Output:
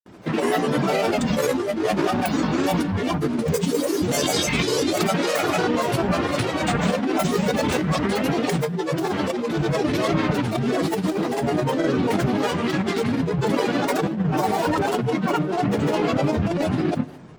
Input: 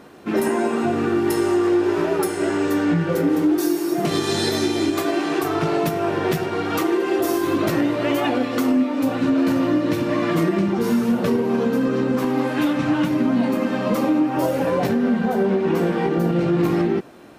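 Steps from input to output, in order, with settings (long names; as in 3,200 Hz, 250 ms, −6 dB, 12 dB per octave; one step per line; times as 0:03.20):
dynamic equaliser 4,600 Hz, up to +6 dB, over −44 dBFS, Q 0.72
compressor whose output falls as the input rises −20 dBFS, ratio −0.5
granular cloud, pitch spread up and down by 12 semitones
convolution reverb RT60 0.90 s, pre-delay 7 ms, DRR 16.5 dB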